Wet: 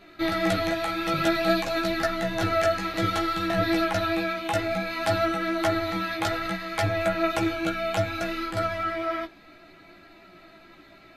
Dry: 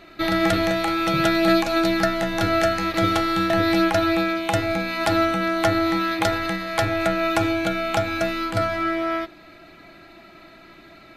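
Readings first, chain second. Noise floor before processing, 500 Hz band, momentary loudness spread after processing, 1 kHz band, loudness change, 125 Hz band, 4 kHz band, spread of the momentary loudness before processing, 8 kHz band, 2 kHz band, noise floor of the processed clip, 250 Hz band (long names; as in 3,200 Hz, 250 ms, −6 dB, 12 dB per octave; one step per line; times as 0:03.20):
−47 dBFS, −4.0 dB, 5 LU, −4.5 dB, −4.5 dB, −3.5 dB, −4.5 dB, 5 LU, −4.5 dB, −4.5 dB, −52 dBFS, −6.0 dB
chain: pitch vibrato 10 Hz 16 cents
multi-voice chorus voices 4, 0.52 Hz, delay 15 ms, depth 4.8 ms
level −1.5 dB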